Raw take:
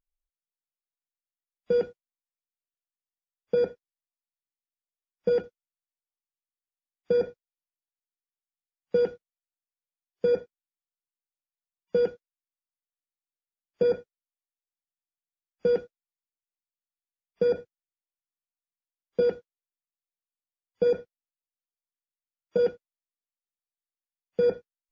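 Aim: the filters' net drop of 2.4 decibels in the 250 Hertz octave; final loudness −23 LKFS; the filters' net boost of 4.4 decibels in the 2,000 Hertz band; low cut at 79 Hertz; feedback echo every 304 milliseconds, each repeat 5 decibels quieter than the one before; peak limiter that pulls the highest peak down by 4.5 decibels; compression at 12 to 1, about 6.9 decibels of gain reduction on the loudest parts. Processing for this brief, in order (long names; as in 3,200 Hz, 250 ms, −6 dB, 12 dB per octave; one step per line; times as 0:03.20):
high-pass filter 79 Hz
parametric band 250 Hz −3.5 dB
parametric band 2,000 Hz +7.5 dB
downward compressor 12 to 1, threshold −27 dBFS
brickwall limiter −22.5 dBFS
repeating echo 304 ms, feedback 56%, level −5 dB
level +15 dB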